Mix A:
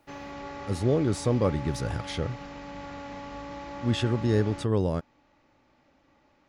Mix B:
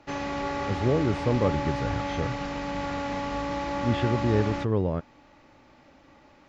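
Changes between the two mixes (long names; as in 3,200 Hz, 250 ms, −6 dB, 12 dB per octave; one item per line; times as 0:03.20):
speech: add low-pass filter 2,500 Hz 12 dB per octave
background +9.0 dB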